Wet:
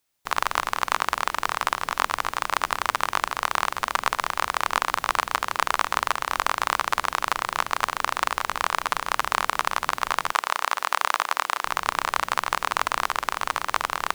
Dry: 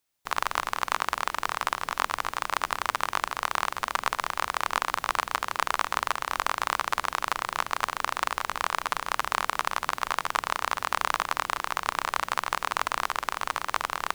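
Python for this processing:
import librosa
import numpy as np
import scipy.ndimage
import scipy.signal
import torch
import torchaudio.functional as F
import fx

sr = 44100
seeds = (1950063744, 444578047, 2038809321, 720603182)

y = fx.highpass(x, sr, hz=420.0, slope=12, at=(10.32, 11.64))
y = F.gain(torch.from_numpy(y), 3.5).numpy()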